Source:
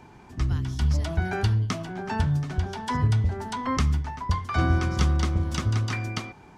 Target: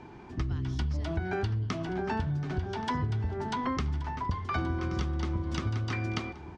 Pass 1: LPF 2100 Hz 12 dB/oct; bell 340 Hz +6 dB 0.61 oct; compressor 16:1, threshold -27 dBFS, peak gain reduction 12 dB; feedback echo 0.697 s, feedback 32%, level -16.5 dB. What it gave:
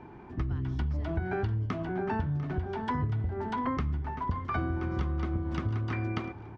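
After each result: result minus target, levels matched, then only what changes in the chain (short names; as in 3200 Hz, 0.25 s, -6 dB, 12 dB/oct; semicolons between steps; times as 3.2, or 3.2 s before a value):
4000 Hz band -8.0 dB; echo 0.43 s early
change: LPF 4800 Hz 12 dB/oct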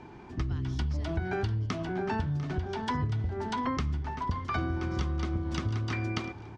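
echo 0.43 s early
change: feedback echo 1.127 s, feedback 32%, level -16.5 dB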